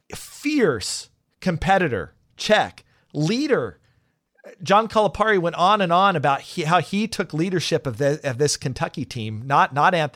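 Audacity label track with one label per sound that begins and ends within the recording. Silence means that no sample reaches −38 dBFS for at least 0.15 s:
1.420000	2.090000	sound
2.380000	2.790000	sound
3.150000	3.720000	sound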